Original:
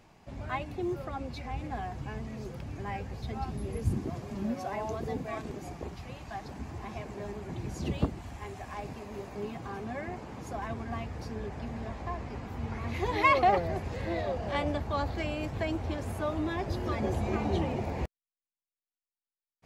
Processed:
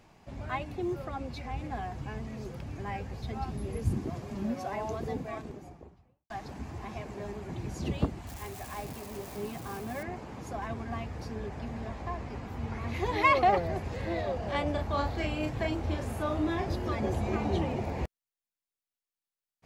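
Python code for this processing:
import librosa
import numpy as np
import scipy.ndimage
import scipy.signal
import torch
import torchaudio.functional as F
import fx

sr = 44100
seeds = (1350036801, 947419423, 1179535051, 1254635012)

y = fx.studio_fade_out(x, sr, start_s=5.02, length_s=1.28)
y = fx.crossing_spikes(y, sr, level_db=-37.0, at=(8.27, 10.03))
y = fx.doubler(y, sr, ms=36.0, db=-4.5, at=(14.72, 16.76))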